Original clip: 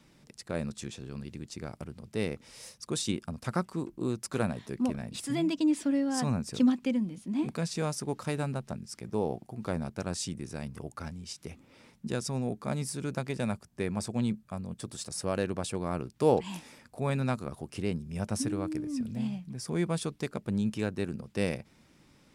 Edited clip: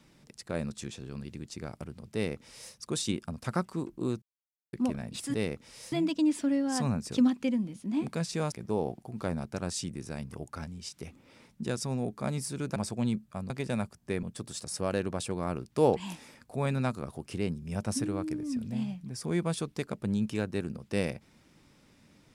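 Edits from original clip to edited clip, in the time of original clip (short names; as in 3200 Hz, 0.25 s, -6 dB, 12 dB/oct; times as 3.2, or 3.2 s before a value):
2.14–2.72 copy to 5.34
4.22–4.73 mute
7.94–8.96 cut
13.2–13.93 move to 14.67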